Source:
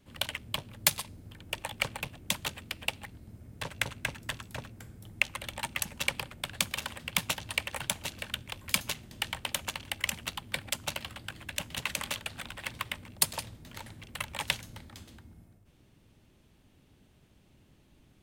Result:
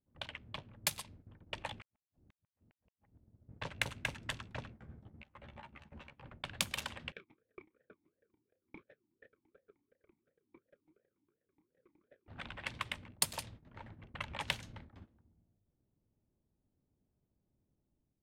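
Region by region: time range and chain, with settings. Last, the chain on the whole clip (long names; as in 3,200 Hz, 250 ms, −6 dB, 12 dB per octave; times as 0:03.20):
0:01.80–0:03.49: downward compressor, threshold −46 dBFS + gate with flip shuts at −34 dBFS, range −40 dB
0:04.70–0:06.24: downward compressor 16 to 1, threshold −42 dBFS + double-tracking delay 14 ms −4 dB
0:07.12–0:12.28: lower of the sound and its delayed copy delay 0.55 ms + double-tracking delay 32 ms −10 dB + formant filter swept between two vowels e-u 2.8 Hz
0:14.14–0:14.60: high-shelf EQ 4,200 Hz −7.5 dB + upward compression, threshold −37 dBFS
whole clip: noise gate −48 dBFS, range −15 dB; automatic gain control gain up to 5.5 dB; low-pass that shuts in the quiet parts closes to 760 Hz, open at −26 dBFS; level −8.5 dB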